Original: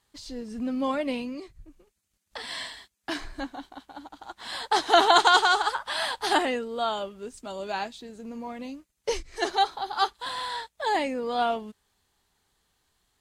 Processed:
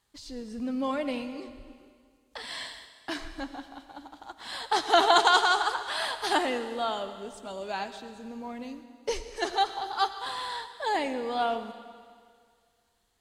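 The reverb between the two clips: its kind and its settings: algorithmic reverb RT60 2 s, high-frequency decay 1×, pre-delay 45 ms, DRR 10.5 dB; trim -2.5 dB

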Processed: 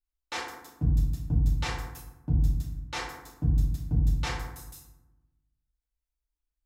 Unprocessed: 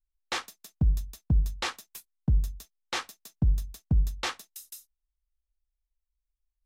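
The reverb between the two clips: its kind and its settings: FDN reverb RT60 1 s, low-frequency decay 1.5×, high-frequency decay 0.45×, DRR -6 dB; trim -8 dB

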